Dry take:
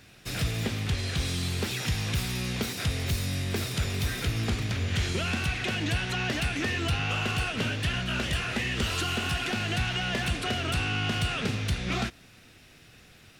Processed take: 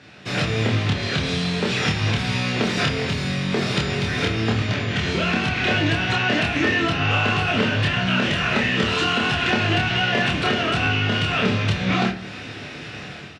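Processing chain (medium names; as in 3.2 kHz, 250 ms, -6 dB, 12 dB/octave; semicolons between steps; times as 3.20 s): level rider gain up to 11.5 dB; treble shelf 6.2 kHz -5.5 dB; compression 12:1, threshold -26 dBFS, peak gain reduction 15 dB; high-pass 140 Hz 12 dB/octave; distance through air 110 m; doubling 27 ms -2.5 dB; reverberation RT60 0.55 s, pre-delay 7 ms, DRR 5.5 dB; trim +8 dB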